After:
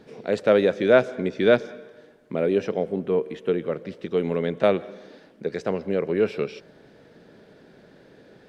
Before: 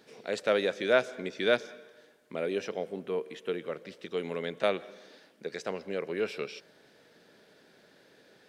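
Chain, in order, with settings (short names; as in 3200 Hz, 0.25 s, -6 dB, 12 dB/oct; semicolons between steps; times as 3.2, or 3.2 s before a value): tilt -3 dB/oct; gain +6 dB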